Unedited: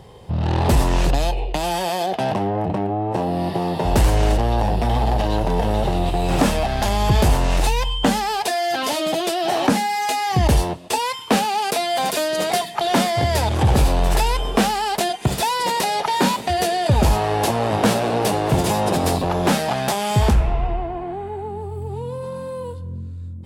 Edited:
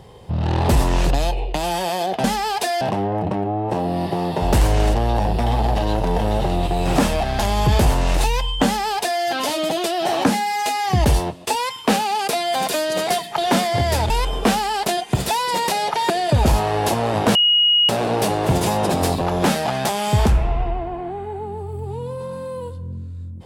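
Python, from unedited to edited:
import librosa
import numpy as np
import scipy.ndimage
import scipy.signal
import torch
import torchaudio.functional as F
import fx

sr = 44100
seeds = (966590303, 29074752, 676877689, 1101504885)

y = fx.edit(x, sr, fx.duplicate(start_s=8.08, length_s=0.57, to_s=2.24),
    fx.cut(start_s=13.53, length_s=0.69),
    fx.cut(start_s=16.22, length_s=0.45),
    fx.insert_tone(at_s=17.92, length_s=0.54, hz=2890.0, db=-12.0), tone=tone)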